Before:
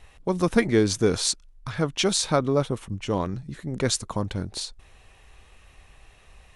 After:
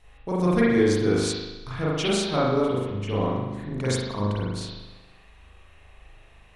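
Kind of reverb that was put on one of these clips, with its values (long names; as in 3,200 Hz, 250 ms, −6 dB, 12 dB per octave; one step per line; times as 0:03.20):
spring reverb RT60 1.1 s, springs 39 ms, chirp 25 ms, DRR −7.5 dB
level −7.5 dB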